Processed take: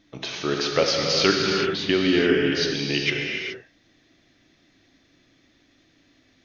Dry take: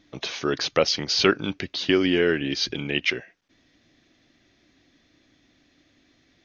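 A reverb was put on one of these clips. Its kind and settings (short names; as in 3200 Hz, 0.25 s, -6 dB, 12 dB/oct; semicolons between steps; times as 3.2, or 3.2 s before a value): non-linear reverb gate 0.45 s flat, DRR -0.5 dB; gain -1.5 dB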